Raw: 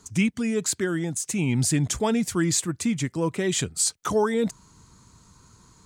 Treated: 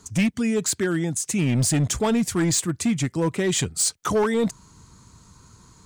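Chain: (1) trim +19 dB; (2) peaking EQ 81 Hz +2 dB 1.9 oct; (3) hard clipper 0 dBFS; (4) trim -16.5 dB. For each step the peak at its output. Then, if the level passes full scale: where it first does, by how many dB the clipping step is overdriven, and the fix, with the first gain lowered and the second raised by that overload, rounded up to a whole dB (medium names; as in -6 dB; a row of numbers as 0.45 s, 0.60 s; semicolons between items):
+7.5 dBFS, +7.5 dBFS, 0.0 dBFS, -16.5 dBFS; step 1, 7.5 dB; step 1 +11 dB, step 4 -8.5 dB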